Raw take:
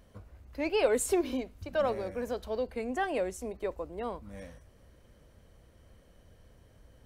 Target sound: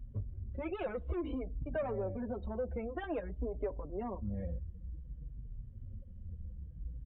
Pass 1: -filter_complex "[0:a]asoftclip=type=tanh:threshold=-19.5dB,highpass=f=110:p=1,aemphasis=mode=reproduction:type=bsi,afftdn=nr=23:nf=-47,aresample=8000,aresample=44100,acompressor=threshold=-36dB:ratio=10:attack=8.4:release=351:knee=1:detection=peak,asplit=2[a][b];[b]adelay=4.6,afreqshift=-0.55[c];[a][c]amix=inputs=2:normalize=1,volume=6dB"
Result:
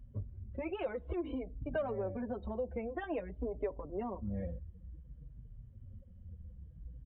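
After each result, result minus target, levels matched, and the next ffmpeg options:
soft clip: distortion -10 dB; 125 Hz band -4.0 dB
-filter_complex "[0:a]asoftclip=type=tanh:threshold=-28.5dB,highpass=f=110:p=1,aemphasis=mode=reproduction:type=bsi,afftdn=nr=23:nf=-47,aresample=8000,aresample=44100,acompressor=threshold=-36dB:ratio=10:attack=8.4:release=351:knee=1:detection=peak,asplit=2[a][b];[b]adelay=4.6,afreqshift=-0.55[c];[a][c]amix=inputs=2:normalize=1,volume=6dB"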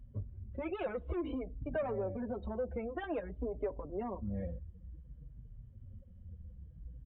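125 Hz band -4.0 dB
-filter_complex "[0:a]asoftclip=type=tanh:threshold=-28.5dB,highpass=f=35:p=1,aemphasis=mode=reproduction:type=bsi,afftdn=nr=23:nf=-47,aresample=8000,aresample=44100,acompressor=threshold=-36dB:ratio=10:attack=8.4:release=351:knee=1:detection=peak,asplit=2[a][b];[b]adelay=4.6,afreqshift=-0.55[c];[a][c]amix=inputs=2:normalize=1,volume=6dB"

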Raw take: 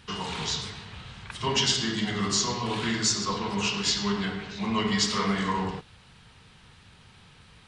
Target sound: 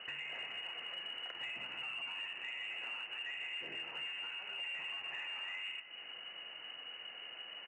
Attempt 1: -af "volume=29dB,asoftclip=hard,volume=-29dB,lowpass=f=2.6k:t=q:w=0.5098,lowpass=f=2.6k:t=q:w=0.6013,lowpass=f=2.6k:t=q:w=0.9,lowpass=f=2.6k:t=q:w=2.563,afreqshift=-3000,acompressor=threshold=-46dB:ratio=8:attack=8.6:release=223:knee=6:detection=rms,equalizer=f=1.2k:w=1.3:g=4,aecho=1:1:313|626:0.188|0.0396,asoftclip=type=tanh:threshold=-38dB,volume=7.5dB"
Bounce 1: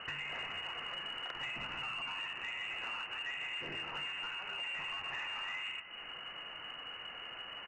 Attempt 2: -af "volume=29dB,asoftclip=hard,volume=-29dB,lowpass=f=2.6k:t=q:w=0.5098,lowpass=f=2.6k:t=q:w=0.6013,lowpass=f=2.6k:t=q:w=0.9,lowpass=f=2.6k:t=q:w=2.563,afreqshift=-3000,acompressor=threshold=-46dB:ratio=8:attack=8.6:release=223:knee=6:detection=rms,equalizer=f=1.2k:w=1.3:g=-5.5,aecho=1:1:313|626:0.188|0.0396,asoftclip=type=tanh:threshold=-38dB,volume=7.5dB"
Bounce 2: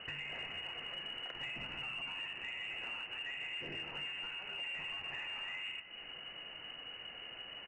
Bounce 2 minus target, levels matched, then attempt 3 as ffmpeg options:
500 Hz band +3.0 dB
-af "volume=29dB,asoftclip=hard,volume=-29dB,lowpass=f=2.6k:t=q:w=0.5098,lowpass=f=2.6k:t=q:w=0.6013,lowpass=f=2.6k:t=q:w=0.9,lowpass=f=2.6k:t=q:w=2.563,afreqshift=-3000,acompressor=threshold=-46dB:ratio=8:attack=8.6:release=223:knee=6:detection=rms,highpass=f=550:p=1,equalizer=f=1.2k:w=1.3:g=-5.5,aecho=1:1:313|626:0.188|0.0396,asoftclip=type=tanh:threshold=-38dB,volume=7.5dB"

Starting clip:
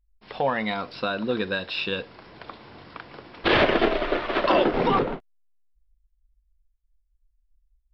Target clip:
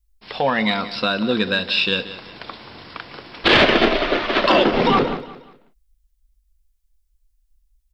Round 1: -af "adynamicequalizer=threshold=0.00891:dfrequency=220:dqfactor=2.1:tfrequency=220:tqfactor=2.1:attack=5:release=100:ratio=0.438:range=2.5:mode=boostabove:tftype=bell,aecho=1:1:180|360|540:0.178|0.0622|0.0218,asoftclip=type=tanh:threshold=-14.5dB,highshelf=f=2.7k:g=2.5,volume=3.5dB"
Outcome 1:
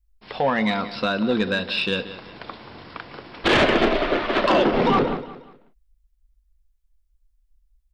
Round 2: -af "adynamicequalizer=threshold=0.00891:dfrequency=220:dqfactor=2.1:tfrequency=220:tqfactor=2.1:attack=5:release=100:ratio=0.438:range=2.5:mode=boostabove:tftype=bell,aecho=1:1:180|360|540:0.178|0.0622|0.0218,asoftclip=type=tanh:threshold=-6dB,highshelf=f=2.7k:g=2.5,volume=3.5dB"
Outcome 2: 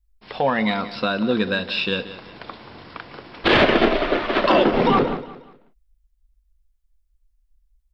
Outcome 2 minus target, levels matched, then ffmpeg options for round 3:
4000 Hz band -3.5 dB
-af "adynamicequalizer=threshold=0.00891:dfrequency=220:dqfactor=2.1:tfrequency=220:tqfactor=2.1:attack=5:release=100:ratio=0.438:range=2.5:mode=boostabove:tftype=bell,aecho=1:1:180|360|540:0.178|0.0622|0.0218,asoftclip=type=tanh:threshold=-6dB,highshelf=f=2.7k:g=11.5,volume=3.5dB"

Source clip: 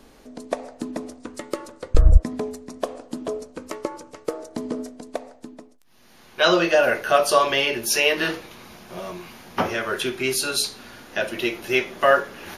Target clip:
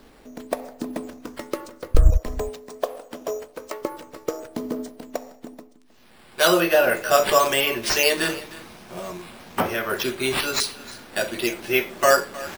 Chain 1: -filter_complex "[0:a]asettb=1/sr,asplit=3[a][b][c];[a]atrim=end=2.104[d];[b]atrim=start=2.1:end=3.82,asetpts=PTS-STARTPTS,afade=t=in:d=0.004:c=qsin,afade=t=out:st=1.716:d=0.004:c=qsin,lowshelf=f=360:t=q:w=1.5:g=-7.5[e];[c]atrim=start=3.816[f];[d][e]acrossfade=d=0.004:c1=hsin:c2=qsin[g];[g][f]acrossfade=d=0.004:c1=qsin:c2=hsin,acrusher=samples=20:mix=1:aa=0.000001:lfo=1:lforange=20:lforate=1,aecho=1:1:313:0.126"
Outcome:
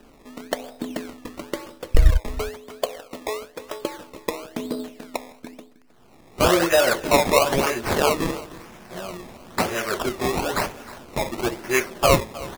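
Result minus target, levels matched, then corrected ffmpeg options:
decimation with a swept rate: distortion +9 dB
-filter_complex "[0:a]asettb=1/sr,asplit=3[a][b][c];[a]atrim=end=2.104[d];[b]atrim=start=2.1:end=3.82,asetpts=PTS-STARTPTS,afade=t=in:d=0.004:c=qsin,afade=t=out:st=1.716:d=0.004:c=qsin,lowshelf=f=360:t=q:w=1.5:g=-7.5[e];[c]atrim=start=3.816[f];[d][e]acrossfade=d=0.004:c1=hsin:c2=qsin[g];[g][f]acrossfade=d=0.004:c1=qsin:c2=hsin,acrusher=samples=5:mix=1:aa=0.000001:lfo=1:lforange=5:lforate=1,aecho=1:1:313:0.126"

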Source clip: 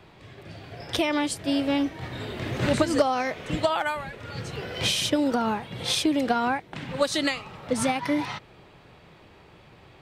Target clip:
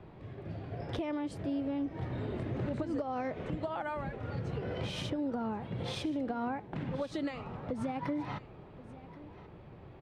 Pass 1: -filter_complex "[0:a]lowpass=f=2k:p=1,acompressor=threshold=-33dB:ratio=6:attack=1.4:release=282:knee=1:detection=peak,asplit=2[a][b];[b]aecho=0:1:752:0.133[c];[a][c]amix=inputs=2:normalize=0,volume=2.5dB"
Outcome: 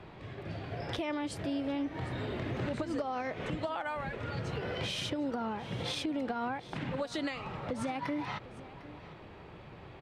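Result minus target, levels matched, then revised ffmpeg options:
echo 0.328 s early; 2000 Hz band +5.0 dB
-filter_complex "[0:a]lowpass=f=530:p=1,acompressor=threshold=-33dB:ratio=6:attack=1.4:release=282:knee=1:detection=peak,asplit=2[a][b];[b]aecho=0:1:1080:0.133[c];[a][c]amix=inputs=2:normalize=0,volume=2.5dB"

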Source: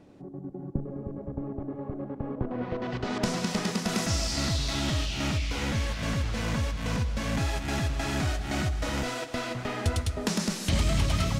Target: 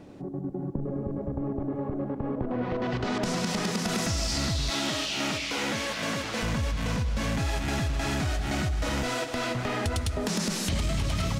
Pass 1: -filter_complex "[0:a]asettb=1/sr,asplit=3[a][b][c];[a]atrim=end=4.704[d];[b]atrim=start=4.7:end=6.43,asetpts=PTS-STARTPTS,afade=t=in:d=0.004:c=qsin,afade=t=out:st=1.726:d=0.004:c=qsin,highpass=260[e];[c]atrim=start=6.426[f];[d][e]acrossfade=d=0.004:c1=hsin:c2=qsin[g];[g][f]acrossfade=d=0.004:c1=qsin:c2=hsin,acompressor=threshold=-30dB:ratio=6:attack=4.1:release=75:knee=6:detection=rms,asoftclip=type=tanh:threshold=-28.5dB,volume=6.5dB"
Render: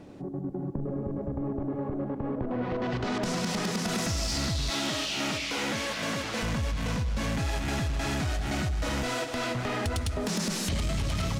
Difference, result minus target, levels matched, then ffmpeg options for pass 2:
soft clip: distortion +10 dB
-filter_complex "[0:a]asettb=1/sr,asplit=3[a][b][c];[a]atrim=end=4.704[d];[b]atrim=start=4.7:end=6.43,asetpts=PTS-STARTPTS,afade=t=in:d=0.004:c=qsin,afade=t=out:st=1.726:d=0.004:c=qsin,highpass=260[e];[c]atrim=start=6.426[f];[d][e]acrossfade=d=0.004:c1=hsin:c2=qsin[g];[g][f]acrossfade=d=0.004:c1=qsin:c2=hsin,acompressor=threshold=-30dB:ratio=6:attack=4.1:release=75:knee=6:detection=rms,asoftclip=type=tanh:threshold=-22dB,volume=6.5dB"

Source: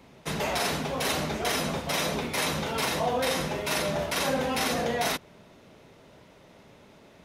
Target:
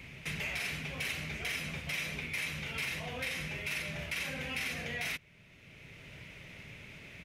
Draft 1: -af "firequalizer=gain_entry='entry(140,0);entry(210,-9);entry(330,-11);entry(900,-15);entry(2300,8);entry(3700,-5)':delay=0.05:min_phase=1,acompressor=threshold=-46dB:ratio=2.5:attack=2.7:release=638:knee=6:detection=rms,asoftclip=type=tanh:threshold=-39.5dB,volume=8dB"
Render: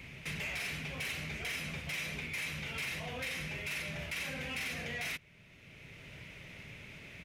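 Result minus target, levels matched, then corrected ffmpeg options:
soft clip: distortion +16 dB
-af "firequalizer=gain_entry='entry(140,0);entry(210,-9);entry(330,-11);entry(900,-15);entry(2300,8);entry(3700,-5)':delay=0.05:min_phase=1,acompressor=threshold=-46dB:ratio=2.5:attack=2.7:release=638:knee=6:detection=rms,asoftclip=type=tanh:threshold=-29dB,volume=8dB"

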